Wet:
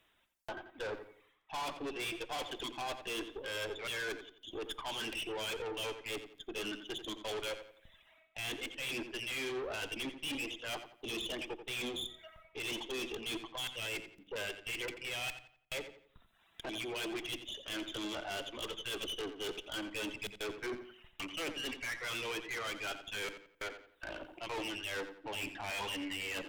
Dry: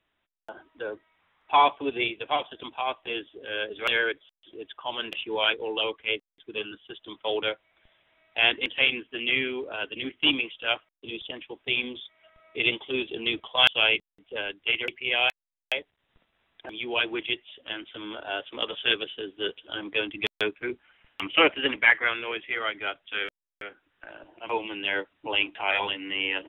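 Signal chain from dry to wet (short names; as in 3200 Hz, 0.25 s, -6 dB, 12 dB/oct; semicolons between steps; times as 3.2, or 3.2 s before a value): tone controls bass 0 dB, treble +9 dB; notches 50/100/150/200/250/300/350 Hz; reverse; compressor 8:1, threshold -31 dBFS, peak gain reduction 18.5 dB; reverse; reverb removal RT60 0.96 s; tube stage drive 43 dB, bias 0.5; darkening echo 87 ms, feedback 35%, low-pass 4400 Hz, level -10 dB; on a send at -20.5 dB: reverb RT60 0.55 s, pre-delay 3 ms; on the sum: gain +6.5 dB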